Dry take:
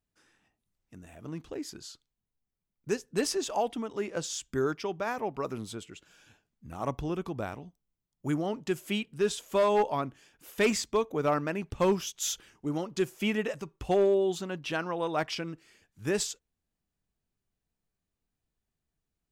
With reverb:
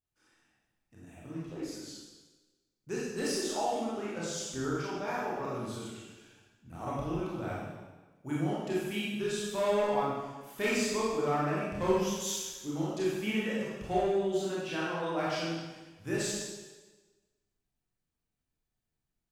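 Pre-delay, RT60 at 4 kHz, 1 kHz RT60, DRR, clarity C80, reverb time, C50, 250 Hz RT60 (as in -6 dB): 19 ms, 1.2 s, 1.2 s, -7.5 dB, 1.0 dB, 1.3 s, -2.5 dB, 1.2 s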